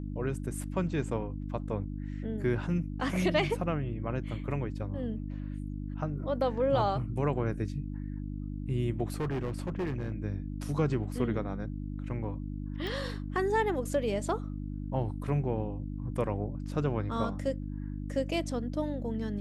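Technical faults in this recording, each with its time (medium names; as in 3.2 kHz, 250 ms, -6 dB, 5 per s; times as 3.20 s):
hum 50 Hz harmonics 6 -37 dBFS
9.14–10.12 s: clipped -28.5 dBFS
12.87 s: pop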